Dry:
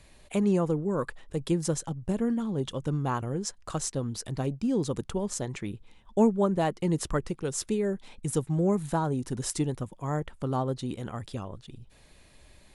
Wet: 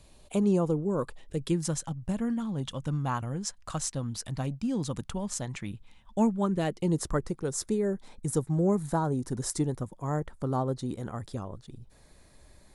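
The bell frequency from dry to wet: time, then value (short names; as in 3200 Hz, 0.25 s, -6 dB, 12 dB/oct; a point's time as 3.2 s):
bell -10.5 dB 0.71 oct
1.07 s 1900 Hz
1.72 s 400 Hz
6.37 s 400 Hz
7.01 s 2800 Hz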